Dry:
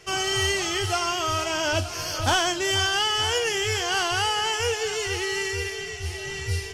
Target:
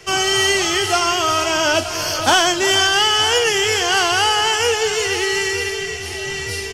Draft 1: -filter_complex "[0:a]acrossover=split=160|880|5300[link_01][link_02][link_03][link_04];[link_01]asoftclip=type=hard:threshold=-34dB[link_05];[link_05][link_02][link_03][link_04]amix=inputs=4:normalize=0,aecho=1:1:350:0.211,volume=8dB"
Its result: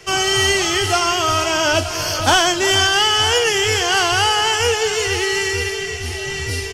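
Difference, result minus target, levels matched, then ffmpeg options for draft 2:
hard clipping: distortion −7 dB
-filter_complex "[0:a]acrossover=split=160|880|5300[link_01][link_02][link_03][link_04];[link_01]asoftclip=type=hard:threshold=-46dB[link_05];[link_05][link_02][link_03][link_04]amix=inputs=4:normalize=0,aecho=1:1:350:0.211,volume=8dB"

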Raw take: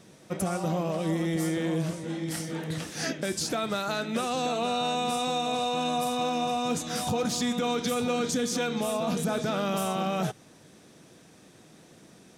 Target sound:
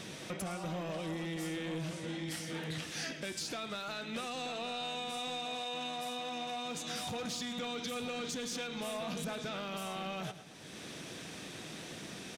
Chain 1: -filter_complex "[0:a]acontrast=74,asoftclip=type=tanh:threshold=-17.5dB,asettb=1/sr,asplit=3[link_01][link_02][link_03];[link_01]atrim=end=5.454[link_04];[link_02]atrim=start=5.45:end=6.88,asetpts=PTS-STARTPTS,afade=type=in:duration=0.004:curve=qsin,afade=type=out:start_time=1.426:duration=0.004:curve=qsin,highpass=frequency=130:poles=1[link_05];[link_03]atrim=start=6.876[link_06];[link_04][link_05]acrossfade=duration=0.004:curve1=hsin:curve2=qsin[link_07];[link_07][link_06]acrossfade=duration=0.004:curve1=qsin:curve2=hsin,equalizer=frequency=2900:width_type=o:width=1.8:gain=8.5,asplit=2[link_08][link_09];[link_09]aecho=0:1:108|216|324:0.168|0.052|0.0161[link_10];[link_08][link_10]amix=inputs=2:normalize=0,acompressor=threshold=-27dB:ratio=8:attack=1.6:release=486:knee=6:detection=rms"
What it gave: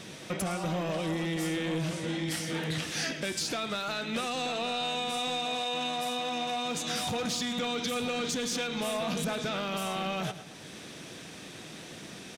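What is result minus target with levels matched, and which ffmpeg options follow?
downward compressor: peak gain reduction −7 dB
-filter_complex "[0:a]acontrast=74,asoftclip=type=tanh:threshold=-17.5dB,asettb=1/sr,asplit=3[link_01][link_02][link_03];[link_01]atrim=end=5.454[link_04];[link_02]atrim=start=5.45:end=6.88,asetpts=PTS-STARTPTS,afade=type=in:duration=0.004:curve=qsin,afade=type=out:start_time=1.426:duration=0.004:curve=qsin,highpass=frequency=130:poles=1[link_05];[link_03]atrim=start=6.876[link_06];[link_04][link_05]acrossfade=duration=0.004:curve1=hsin:curve2=qsin[link_07];[link_07][link_06]acrossfade=duration=0.004:curve1=qsin:curve2=hsin,equalizer=frequency=2900:width_type=o:width=1.8:gain=8.5,asplit=2[link_08][link_09];[link_09]aecho=0:1:108|216|324:0.168|0.052|0.0161[link_10];[link_08][link_10]amix=inputs=2:normalize=0,acompressor=threshold=-35dB:ratio=8:attack=1.6:release=486:knee=6:detection=rms"

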